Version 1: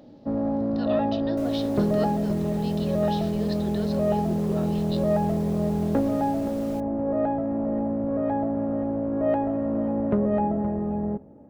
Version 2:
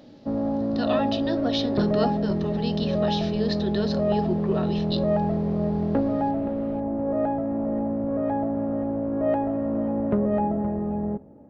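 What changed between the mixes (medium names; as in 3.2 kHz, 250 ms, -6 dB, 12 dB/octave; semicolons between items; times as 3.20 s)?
speech +8.0 dB; second sound: add distance through air 450 m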